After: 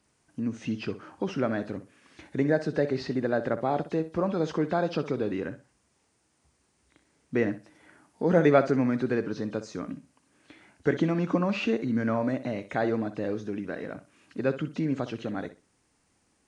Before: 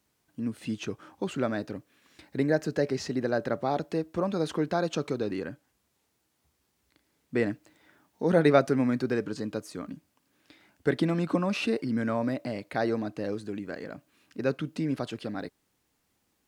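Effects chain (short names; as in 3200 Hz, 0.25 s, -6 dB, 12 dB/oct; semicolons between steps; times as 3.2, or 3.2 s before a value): nonlinear frequency compression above 3000 Hz 1.5:1; in parallel at -2 dB: compressor, threshold -41 dBFS, peak gain reduction 23.5 dB; on the sum: bell 3700 Hz -5.5 dB 0.57 oct; flutter echo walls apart 10.7 m, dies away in 0.28 s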